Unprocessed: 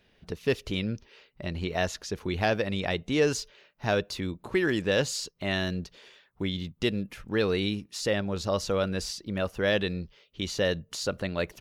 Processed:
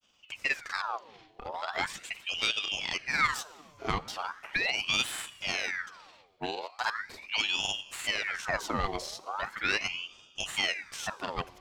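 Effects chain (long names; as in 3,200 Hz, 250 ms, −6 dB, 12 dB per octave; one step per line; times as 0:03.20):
stylus tracing distortion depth 0.033 ms
granular cloud, spray 31 ms, pitch spread up and down by 0 semitones
four-comb reverb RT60 1.6 s, combs from 30 ms, DRR 17.5 dB
ring modulator whose carrier an LFO sweeps 1,800 Hz, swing 70%, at 0.39 Hz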